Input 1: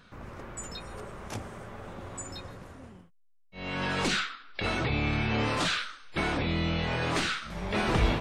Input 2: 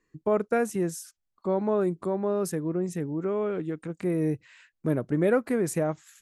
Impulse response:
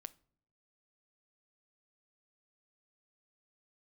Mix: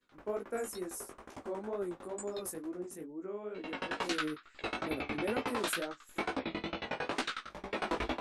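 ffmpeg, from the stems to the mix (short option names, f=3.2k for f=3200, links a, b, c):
-filter_complex "[0:a]adynamicequalizer=threshold=0.00631:dfrequency=930:dqfactor=0.87:tfrequency=930:tqfactor=0.87:attack=5:release=100:ratio=0.375:range=2:mode=boostabove:tftype=bell,agate=range=-33dB:threshold=-55dB:ratio=3:detection=peak,aeval=exprs='val(0)*pow(10,-29*if(lt(mod(11*n/s,1),2*abs(11)/1000),1-mod(11*n/s,1)/(2*abs(11)/1000),(mod(11*n/s,1)-2*abs(11)/1000)/(1-2*abs(11)/1000))/20)':c=same,volume=2dB[a];[1:a]equalizer=f=11k:w=0.98:g=14,volume=-11dB[b];[a][b]amix=inputs=2:normalize=0,lowshelf=f=200:t=q:w=1.5:g=-10,flanger=delay=15:depth=5.2:speed=2.2"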